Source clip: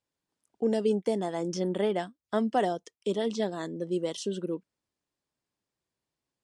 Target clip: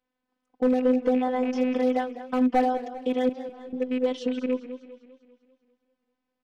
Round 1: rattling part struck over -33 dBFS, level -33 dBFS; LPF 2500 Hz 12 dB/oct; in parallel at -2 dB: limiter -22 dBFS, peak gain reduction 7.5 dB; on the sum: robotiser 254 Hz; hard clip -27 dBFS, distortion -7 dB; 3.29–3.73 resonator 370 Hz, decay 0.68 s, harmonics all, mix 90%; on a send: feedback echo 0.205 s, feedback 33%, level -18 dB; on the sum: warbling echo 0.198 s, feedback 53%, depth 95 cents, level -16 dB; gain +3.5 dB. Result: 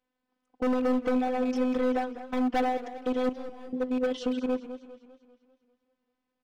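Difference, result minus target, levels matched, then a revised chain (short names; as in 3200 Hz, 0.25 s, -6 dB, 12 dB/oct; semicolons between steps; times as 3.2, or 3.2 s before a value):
hard clip: distortion +10 dB
rattling part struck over -33 dBFS, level -33 dBFS; LPF 2500 Hz 12 dB/oct; in parallel at -2 dB: limiter -22 dBFS, peak gain reduction 7.5 dB; on the sum: robotiser 254 Hz; hard clip -19 dBFS, distortion -17 dB; 3.29–3.73 resonator 370 Hz, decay 0.68 s, harmonics all, mix 90%; on a send: feedback echo 0.205 s, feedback 33%, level -18 dB; on the sum: warbling echo 0.198 s, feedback 53%, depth 95 cents, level -16 dB; gain +3.5 dB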